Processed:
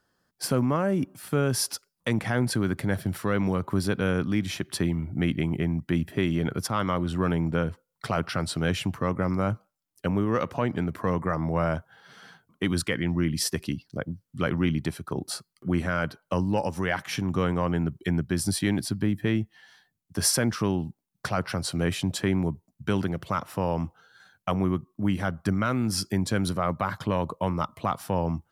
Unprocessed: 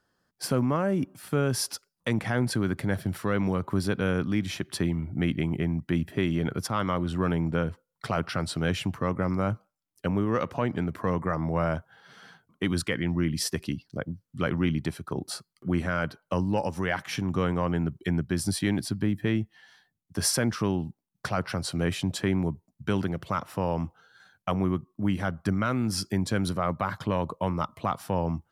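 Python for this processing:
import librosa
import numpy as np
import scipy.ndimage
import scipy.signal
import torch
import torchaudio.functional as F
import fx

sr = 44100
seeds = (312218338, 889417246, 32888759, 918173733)

y = fx.high_shelf(x, sr, hz=8300.0, db=3.5)
y = F.gain(torch.from_numpy(y), 1.0).numpy()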